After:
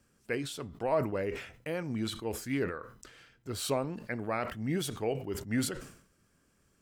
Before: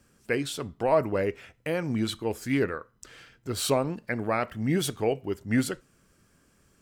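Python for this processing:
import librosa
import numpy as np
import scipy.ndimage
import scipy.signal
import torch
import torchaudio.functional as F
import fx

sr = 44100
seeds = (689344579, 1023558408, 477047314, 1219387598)

y = fx.sustainer(x, sr, db_per_s=92.0)
y = y * 10.0 ** (-6.5 / 20.0)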